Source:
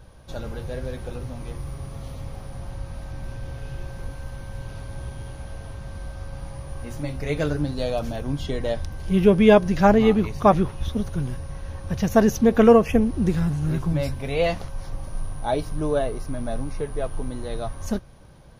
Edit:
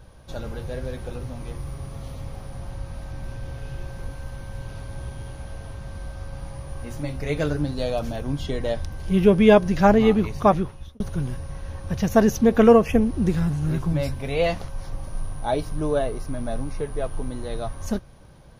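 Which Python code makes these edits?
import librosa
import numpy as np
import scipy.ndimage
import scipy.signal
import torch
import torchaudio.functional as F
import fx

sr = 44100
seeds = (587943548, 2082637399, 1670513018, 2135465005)

y = fx.edit(x, sr, fx.fade_out_span(start_s=10.41, length_s=0.59), tone=tone)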